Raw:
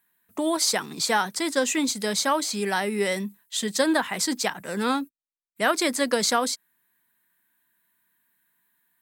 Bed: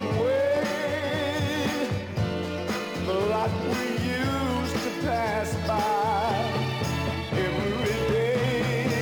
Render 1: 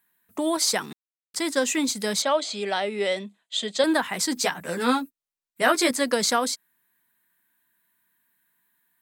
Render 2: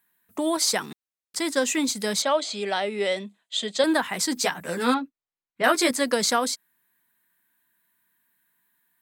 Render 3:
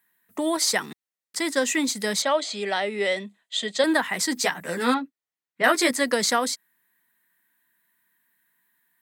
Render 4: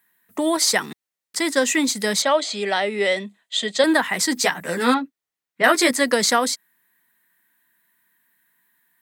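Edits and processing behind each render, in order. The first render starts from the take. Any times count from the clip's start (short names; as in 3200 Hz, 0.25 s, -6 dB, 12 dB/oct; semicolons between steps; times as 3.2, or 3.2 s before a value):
0.93–1.34 mute; 2.22–3.84 speaker cabinet 280–6900 Hz, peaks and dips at 310 Hz -4 dB, 630 Hz +7 dB, 1000 Hz -5 dB, 1700 Hz -5 dB, 3400 Hz +6 dB, 5600 Hz -9 dB; 4.35–5.91 doubler 12 ms -2.5 dB
4.94–5.64 air absorption 220 m
HPF 110 Hz; bell 1900 Hz +7 dB 0.21 oct
gain +4 dB; limiter -3 dBFS, peak gain reduction 1.5 dB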